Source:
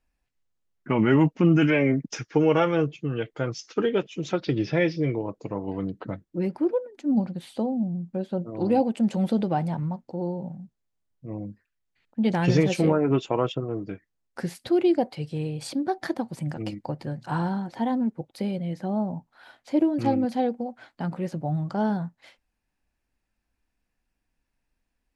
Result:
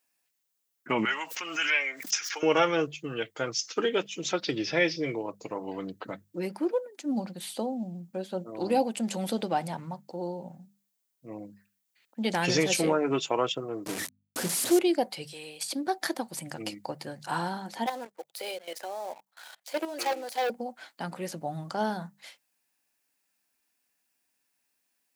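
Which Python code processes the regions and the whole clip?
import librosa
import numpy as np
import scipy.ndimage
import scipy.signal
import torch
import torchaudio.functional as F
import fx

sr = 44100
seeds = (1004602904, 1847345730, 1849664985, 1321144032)

y = fx.chain(x, sr, fx.highpass(hz=1200.0, slope=12),
    fx.pre_swell(db_per_s=59.0), at=(1.05, 2.43))
y = fx.chain(y, sr, fx.delta_mod(bps=64000, step_db=-27.5),
    fx.tilt_shelf(db=6.0, hz=830.0),
    fx.hum_notches(base_hz=50, count=5), at=(13.86, 14.79))
y = fx.chain(y, sr, fx.highpass(hz=1100.0, slope=6),
    fx.over_compress(threshold_db=-41.0, ratio=-0.5), at=(15.31, 15.71))
y = fx.chain(y, sr, fx.highpass(hz=430.0, slope=24),
    fx.level_steps(step_db=14),
    fx.leveller(passes=2), at=(17.86, 20.5))
y = scipy.signal.sosfilt(scipy.signal.butter(2, 98.0, 'highpass', fs=sr, output='sos'), y)
y = fx.riaa(y, sr, side='recording')
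y = fx.hum_notches(y, sr, base_hz=50, count=4)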